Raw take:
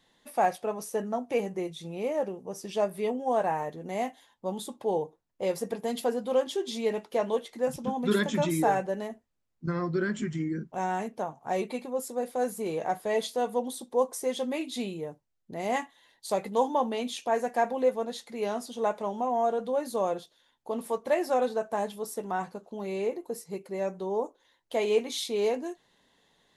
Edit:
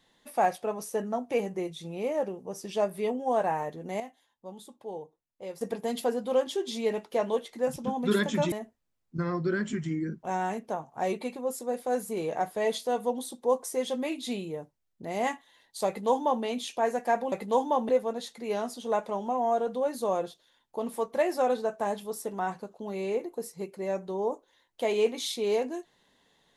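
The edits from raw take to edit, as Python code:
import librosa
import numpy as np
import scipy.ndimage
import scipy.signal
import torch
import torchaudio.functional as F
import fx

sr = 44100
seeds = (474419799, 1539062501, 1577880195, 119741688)

y = fx.edit(x, sr, fx.clip_gain(start_s=4.0, length_s=1.61, db=-10.5),
    fx.cut(start_s=8.52, length_s=0.49),
    fx.duplicate(start_s=16.36, length_s=0.57, to_s=17.81), tone=tone)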